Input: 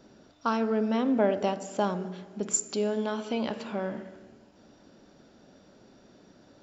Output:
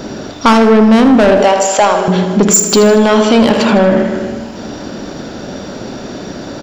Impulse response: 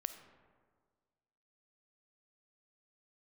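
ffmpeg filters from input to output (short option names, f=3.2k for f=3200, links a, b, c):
-filter_complex "[0:a]asettb=1/sr,asplit=3[a][b][c];[a]atrim=end=1.424[d];[b]atrim=start=1.42:end=2.08,asetpts=PTS-STARTPTS,afade=t=in:d=0.004:c=qsin,afade=t=out:st=0.656:d=0.004:c=qsin,highpass=620[e];[c]atrim=start=2.076[f];[d][e]acrossfade=d=0.004:c1=hsin:c2=qsin[g];[g][f]acrossfade=d=0.004:c1=qsin:c2=hsin,asplit=2[h][i];[i]acompressor=threshold=-43dB:ratio=6,volume=-1.5dB[j];[h][j]amix=inputs=2:normalize=0,asoftclip=type=tanh:threshold=-27dB,aecho=1:1:78|156|234|312|390|468|546:0.282|0.166|0.0981|0.0579|0.0342|0.0201|0.0119,alimiter=level_in=26.5dB:limit=-1dB:release=50:level=0:latency=1,volume=-1dB"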